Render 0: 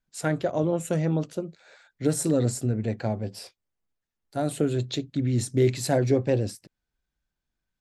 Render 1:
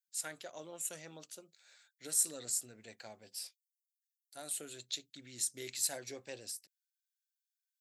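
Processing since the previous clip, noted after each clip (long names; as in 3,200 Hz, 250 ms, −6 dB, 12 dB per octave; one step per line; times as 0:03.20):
first difference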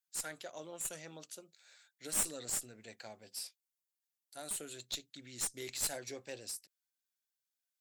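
asymmetric clip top −37.5 dBFS
level +1 dB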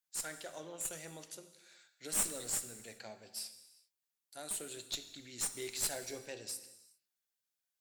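reverb whose tail is shaped and stops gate 430 ms falling, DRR 9 dB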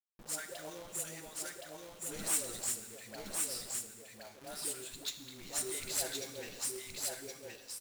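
all-pass dispersion highs, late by 146 ms, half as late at 530 Hz
log-companded quantiser 4 bits
single-tap delay 1,069 ms −3 dB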